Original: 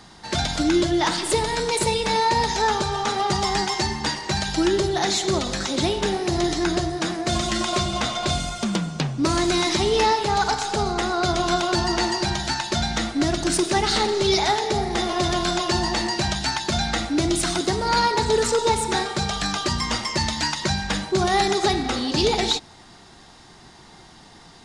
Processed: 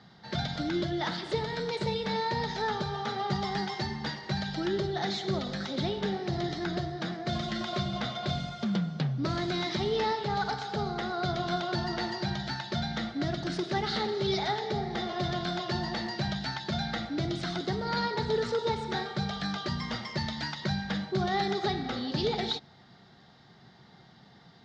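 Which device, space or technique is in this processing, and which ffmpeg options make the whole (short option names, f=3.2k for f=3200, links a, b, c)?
guitar cabinet: -af "highpass=93,equalizer=f=130:t=q:w=4:g=7,equalizer=f=190:t=q:w=4:g=5,equalizer=f=320:t=q:w=4:g=-6,equalizer=f=1k:t=q:w=4:g=-7,equalizer=f=2.6k:t=q:w=4:g=-8,lowpass=f=4.4k:w=0.5412,lowpass=f=4.4k:w=1.3066,volume=-7.5dB"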